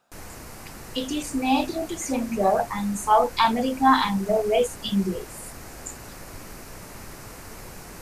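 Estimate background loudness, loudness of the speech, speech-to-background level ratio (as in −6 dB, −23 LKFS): −41.0 LKFS, −23.5 LKFS, 17.5 dB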